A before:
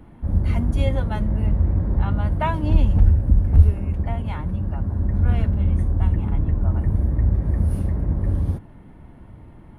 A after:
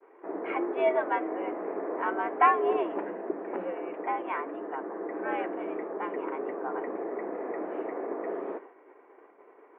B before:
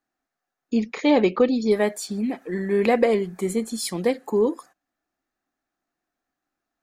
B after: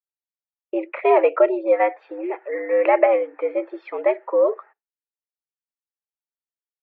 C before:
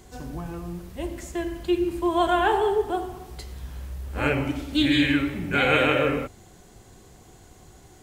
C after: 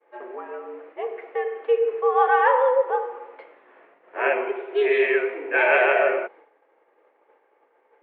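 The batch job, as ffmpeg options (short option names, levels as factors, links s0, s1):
-af "highpass=f=280:t=q:w=0.5412,highpass=f=280:t=q:w=1.307,lowpass=f=2300:t=q:w=0.5176,lowpass=f=2300:t=q:w=0.7071,lowpass=f=2300:t=q:w=1.932,afreqshift=110,agate=range=0.0224:threshold=0.00447:ratio=3:detection=peak,volume=1.5"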